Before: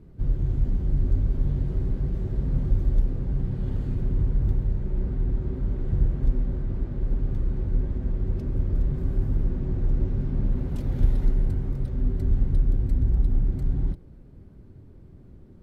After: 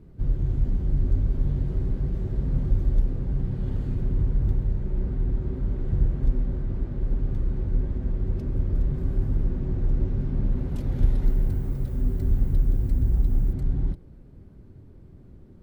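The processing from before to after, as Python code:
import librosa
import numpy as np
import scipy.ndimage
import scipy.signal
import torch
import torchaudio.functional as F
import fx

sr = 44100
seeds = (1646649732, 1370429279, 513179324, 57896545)

y = fx.dmg_noise_colour(x, sr, seeds[0], colour='violet', level_db=-60.0, at=(11.24, 13.52), fade=0.02)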